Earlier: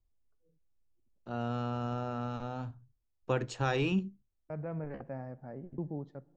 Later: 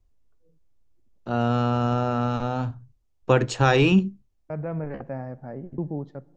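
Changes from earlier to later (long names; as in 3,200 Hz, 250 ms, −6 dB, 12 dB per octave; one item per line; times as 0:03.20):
first voice +12.0 dB
second voice +8.0 dB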